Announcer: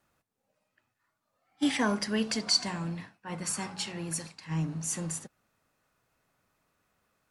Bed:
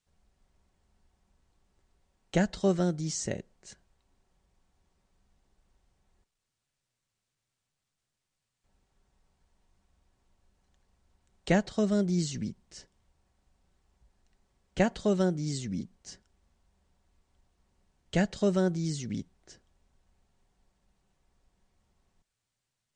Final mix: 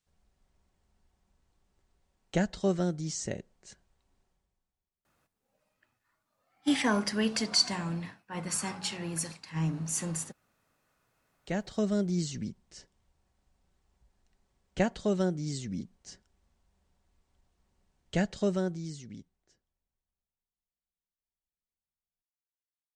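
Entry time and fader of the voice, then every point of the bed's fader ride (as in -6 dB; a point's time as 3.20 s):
5.05 s, +0.5 dB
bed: 4.23 s -2 dB
4.97 s -25 dB
11.11 s -25 dB
11.70 s -2 dB
18.45 s -2 dB
20.68 s -31 dB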